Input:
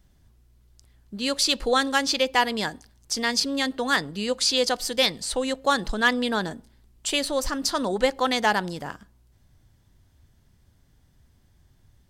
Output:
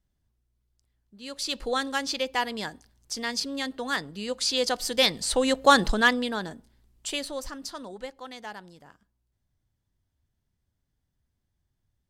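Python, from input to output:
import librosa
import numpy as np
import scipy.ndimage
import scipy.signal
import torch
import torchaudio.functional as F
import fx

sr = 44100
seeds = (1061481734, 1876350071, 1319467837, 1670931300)

y = fx.gain(x, sr, db=fx.line((1.15, -16.5), (1.58, -6.0), (4.21, -6.0), (5.81, 5.5), (6.34, -5.5), (7.07, -5.5), (8.21, -18.0)))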